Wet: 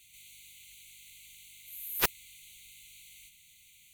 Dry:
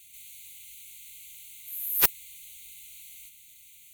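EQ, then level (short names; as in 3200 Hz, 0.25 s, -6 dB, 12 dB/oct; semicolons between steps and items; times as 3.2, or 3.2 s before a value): high shelf 8800 Hz -11.5 dB; 0.0 dB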